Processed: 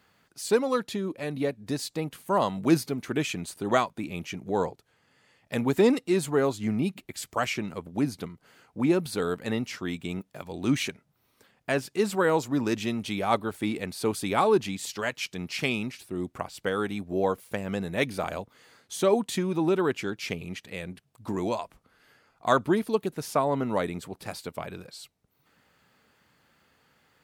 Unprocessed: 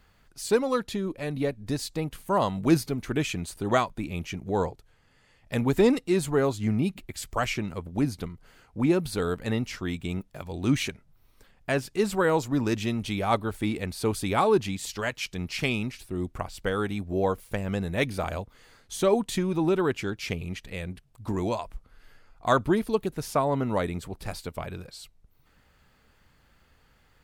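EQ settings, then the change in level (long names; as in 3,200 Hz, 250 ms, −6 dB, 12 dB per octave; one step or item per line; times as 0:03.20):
high-pass filter 150 Hz 12 dB per octave
0.0 dB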